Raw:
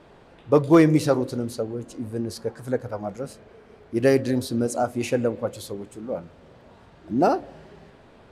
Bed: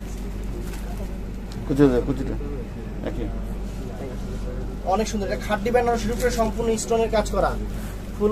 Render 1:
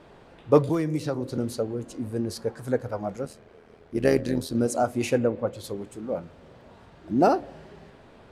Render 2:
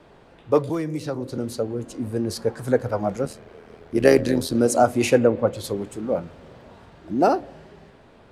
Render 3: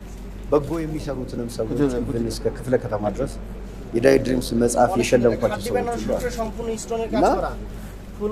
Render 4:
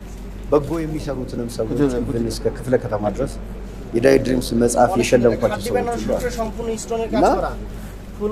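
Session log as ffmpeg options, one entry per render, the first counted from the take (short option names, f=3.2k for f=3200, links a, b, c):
-filter_complex "[0:a]asettb=1/sr,asplit=3[a][b][c];[a]atrim=end=0.694[d];[b]atrim=start=0.69:end=1.38,asetpts=PTS-STARTPTS,afade=t=in:d=0.004:c=qsin,afade=t=out:st=0.686:d=0.004:c=qsin,acrossover=split=220|6400[e][f][g];[e]acompressor=threshold=-31dB:ratio=4[h];[f]acompressor=threshold=-28dB:ratio=4[i];[g]acompressor=threshold=-54dB:ratio=4[j];[h][i][j]amix=inputs=3:normalize=0[k];[c]atrim=start=1.376[l];[d][k]acrossfade=d=0.004:c1=hsin:c2=qsin[m];[m][l]acrossfade=d=0.004:c1=qsin:c2=hsin,asettb=1/sr,asplit=3[n][o][p];[n]atrim=end=3.254[q];[o]atrim=start=3.25:end=4.55,asetpts=PTS-STARTPTS,afade=t=in:d=0.004:c=qsin,afade=t=out:st=1.296:d=0.004:c=qsin,tremolo=f=80:d=0.667[r];[p]atrim=start=4.546[s];[q][r]acrossfade=d=0.004:c1=hsin:c2=qsin[t];[t][s]acrossfade=d=0.004:c1=qsin:c2=hsin,asplit=3[u][v][w];[u]afade=t=out:st=5.17:d=0.02[x];[v]lowpass=f=2.5k:p=1,afade=t=in:st=5.17:d=0.02,afade=t=out:st=5.63:d=0.02[y];[w]afade=t=in:st=5.63:d=0.02[z];[x][y][z]amix=inputs=3:normalize=0"
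-filter_complex "[0:a]acrossover=split=260|1100|1700[a][b][c][d];[a]alimiter=level_in=4.5dB:limit=-24dB:level=0:latency=1,volume=-4.5dB[e];[e][b][c][d]amix=inputs=4:normalize=0,dynaudnorm=f=300:g=13:m=11.5dB"
-filter_complex "[1:a]volume=-4.5dB[a];[0:a][a]amix=inputs=2:normalize=0"
-af "volume=2.5dB,alimiter=limit=-1dB:level=0:latency=1"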